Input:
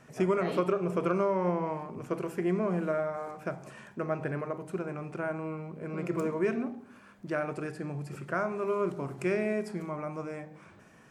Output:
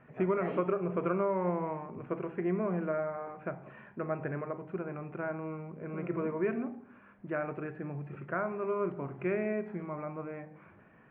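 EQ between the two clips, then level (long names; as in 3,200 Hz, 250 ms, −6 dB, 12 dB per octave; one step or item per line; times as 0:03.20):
inverse Chebyshev low-pass filter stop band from 4,800 Hz, stop band 40 dB
−2.5 dB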